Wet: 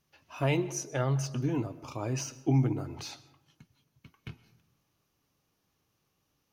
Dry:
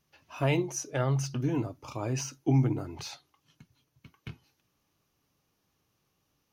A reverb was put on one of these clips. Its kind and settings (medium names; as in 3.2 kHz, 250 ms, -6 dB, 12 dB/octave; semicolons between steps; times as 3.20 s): algorithmic reverb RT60 1 s, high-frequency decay 0.45×, pre-delay 85 ms, DRR 17.5 dB; trim -1 dB